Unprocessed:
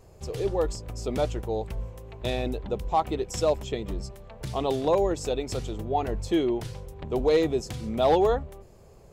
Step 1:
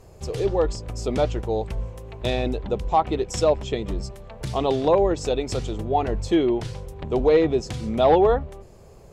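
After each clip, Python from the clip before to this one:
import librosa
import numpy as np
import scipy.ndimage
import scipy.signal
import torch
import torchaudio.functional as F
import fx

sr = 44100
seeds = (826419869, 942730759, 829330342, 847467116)

y = fx.env_lowpass_down(x, sr, base_hz=2800.0, full_db=-18.0)
y = y * 10.0 ** (4.5 / 20.0)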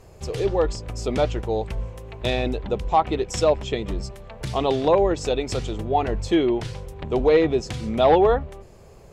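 y = fx.peak_eq(x, sr, hz=2200.0, db=3.5, octaves=1.8)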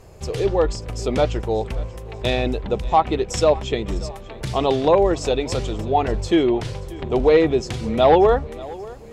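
y = fx.echo_feedback(x, sr, ms=585, feedback_pct=54, wet_db=-20.0)
y = y * 10.0 ** (2.5 / 20.0)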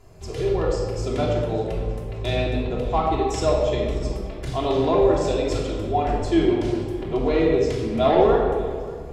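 y = fx.room_shoebox(x, sr, seeds[0], volume_m3=1600.0, walls='mixed', distance_m=3.1)
y = y * 10.0 ** (-8.5 / 20.0)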